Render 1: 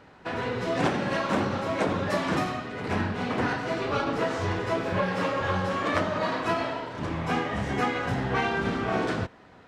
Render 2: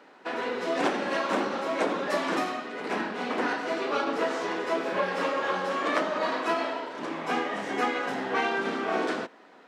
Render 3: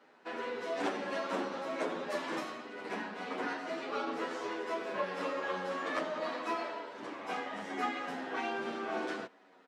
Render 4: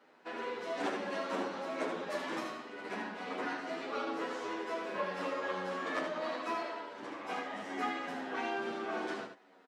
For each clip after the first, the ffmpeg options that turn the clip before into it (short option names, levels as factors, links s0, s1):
-af "highpass=f=250:w=0.5412,highpass=f=250:w=1.3066"
-filter_complex "[0:a]asplit=2[s0][s1];[s1]adelay=9.4,afreqshift=-0.48[s2];[s0][s2]amix=inputs=2:normalize=1,volume=0.531"
-af "aecho=1:1:76:0.447,volume=0.841"